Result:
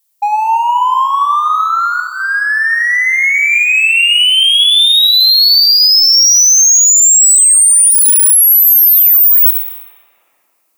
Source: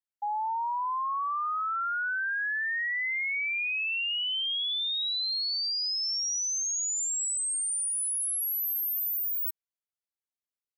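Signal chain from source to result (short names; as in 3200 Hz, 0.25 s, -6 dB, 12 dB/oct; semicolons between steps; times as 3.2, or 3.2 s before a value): 7.91–8.33 minimum comb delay 8.7 ms; bell 1600 Hz -10.5 dB 2.5 oct; in parallel at -4 dB: hard clip -39.5 dBFS, distortion -7 dB; on the sum: HPF 730 Hz 12 dB/oct; high shelf 8600 Hz +8.5 dB; notch 1500 Hz, Q 9.3; on a send at -7.5 dB: reverb RT60 2.9 s, pre-delay 5 ms; on the sum: maximiser +25 dB; gain -1 dB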